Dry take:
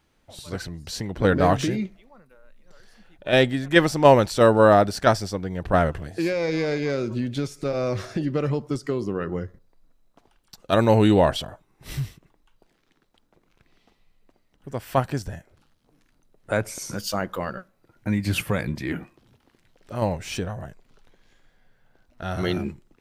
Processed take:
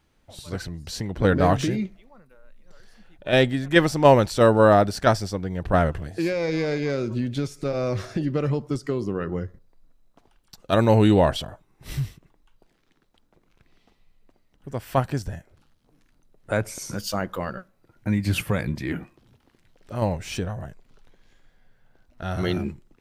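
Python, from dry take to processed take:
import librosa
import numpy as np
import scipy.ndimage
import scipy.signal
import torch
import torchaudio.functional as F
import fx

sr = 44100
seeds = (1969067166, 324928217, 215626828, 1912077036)

y = fx.low_shelf(x, sr, hz=160.0, db=4.0)
y = y * librosa.db_to_amplitude(-1.0)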